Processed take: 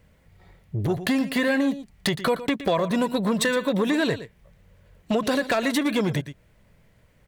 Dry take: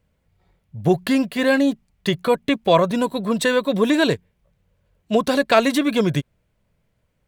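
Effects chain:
parametric band 1,900 Hz +5.5 dB 0.31 octaves
in parallel at +2.5 dB: brickwall limiter −13 dBFS, peak gain reduction 11 dB
on the sum: downward compressor 8 to 1, threshold −21 dBFS, peak gain reduction 15 dB
wave folding −15 dBFS
single-tap delay 116 ms −14.5 dB
saturating transformer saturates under 340 Hz
level +2 dB

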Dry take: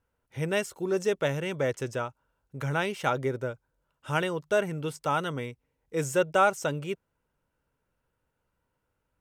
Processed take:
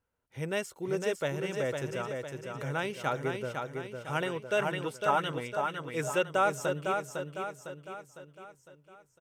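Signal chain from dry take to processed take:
low-shelf EQ 63 Hz −6 dB
repeating echo 505 ms, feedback 49%, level −5 dB
0:04.21–0:06.28: auto-filter bell 4.3 Hz 670–3,100 Hz +9 dB
level −4.5 dB

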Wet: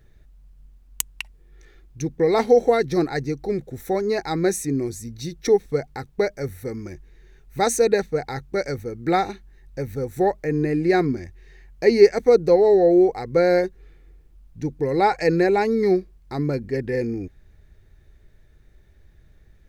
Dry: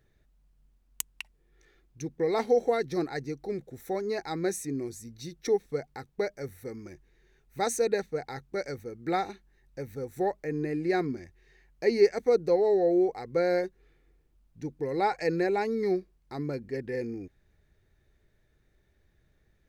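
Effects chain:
low-shelf EQ 95 Hz +10 dB
level +8 dB

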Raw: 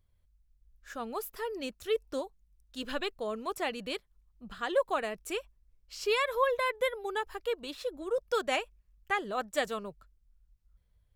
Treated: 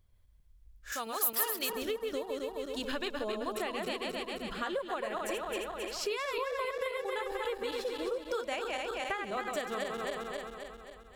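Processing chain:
feedback delay that plays each chunk backwards 133 ms, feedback 73%, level −4 dB
downward compressor 10 to 1, threshold −35 dBFS, peak gain reduction 14.5 dB
0:00.92–0:01.70: spectral tilt +4 dB per octave
level +3.5 dB

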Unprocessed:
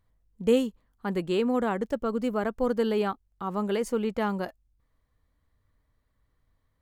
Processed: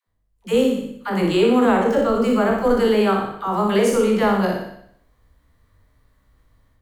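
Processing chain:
peak hold with a decay on every bin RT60 0.57 s
automatic gain control gain up to 13.5 dB
all-pass dispersion lows, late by 76 ms, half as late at 450 Hz
on a send: flutter between parallel walls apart 10.4 metres, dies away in 0.6 s
on the sum: level −3.5 dB

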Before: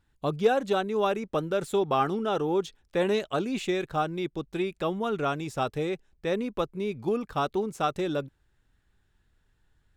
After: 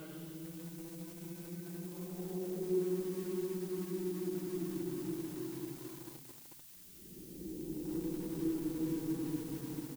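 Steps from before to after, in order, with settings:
stylus tracing distortion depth 0.37 ms
parametric band 890 Hz +5.5 dB 0.36 octaves
downward compressor 3 to 1, threshold −51 dBFS, peak gain reduction 25 dB
tube saturation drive 39 dB, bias 0.25
extreme stretch with random phases 28×, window 0.10 s, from 0:04.08
low-pass filter sweep 3,800 Hz → 280 Hz, 0:01.11–0:03.05
background noise blue −65 dBFS
double-tracking delay 16 ms −8 dB
delay with a high-pass on its return 90 ms, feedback 71%, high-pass 2,200 Hz, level −5.5 dB
feedback echo at a low word length 441 ms, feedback 55%, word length 9 bits, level −5.5 dB
level +6.5 dB

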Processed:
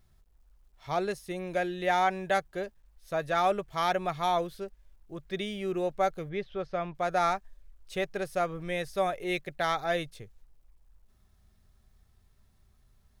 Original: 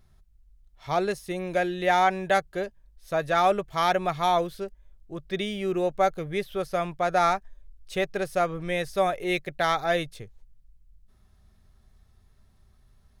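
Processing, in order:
bit reduction 12 bits
0:06.29–0:06.95: high-frequency loss of the air 180 metres
level −4.5 dB

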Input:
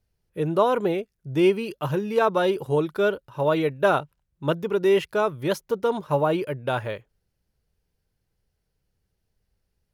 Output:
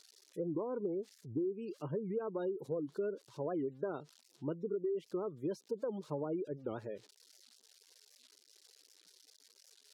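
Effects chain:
spike at every zero crossing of −25 dBFS
high-pass filter 230 Hz 12 dB per octave
gate on every frequency bin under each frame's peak −20 dB strong
flat-topped bell 1,300 Hz −11.5 dB 2.7 octaves
downward compressor 12 to 1, threshold −28 dBFS, peak gain reduction 12.5 dB
head-to-tape spacing loss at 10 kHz 26 dB
wow of a warped record 78 rpm, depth 250 cents
level −4 dB

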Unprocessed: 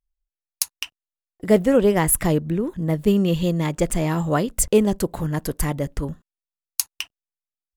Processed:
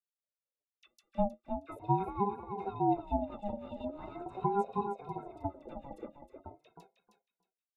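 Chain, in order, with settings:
slices reordered back to front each 183 ms, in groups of 3
resonances in every octave G, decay 0.11 s
all-pass dispersion lows, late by 51 ms, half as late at 1,400 Hz
rotating-speaker cabinet horn 8 Hz
repeating echo 314 ms, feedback 19%, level −7 dB
ring modulator whose carrier an LFO sweeps 510 Hz, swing 20%, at 0.42 Hz
level −4 dB

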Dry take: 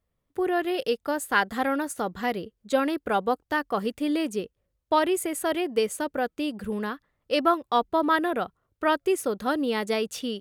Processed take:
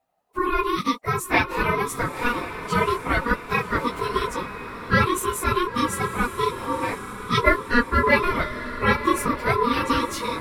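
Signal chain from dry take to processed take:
random phases in long frames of 50 ms
ring modulation 720 Hz
feedback delay with all-pass diffusion 999 ms, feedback 47%, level −11 dB
level +6 dB

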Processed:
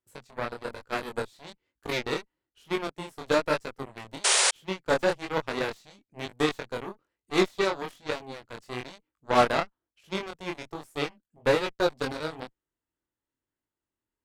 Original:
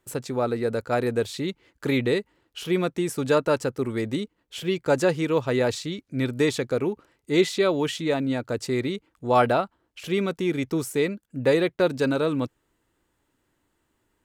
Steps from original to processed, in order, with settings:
harmonic generator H 2 −13 dB, 3 −38 dB, 7 −16 dB, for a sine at −7.5 dBFS
chorus effect 1.1 Hz, delay 19 ms, depth 6.9 ms
sound drawn into the spectrogram noise, 0:04.24–0:04.51, 370–10,000 Hz −22 dBFS

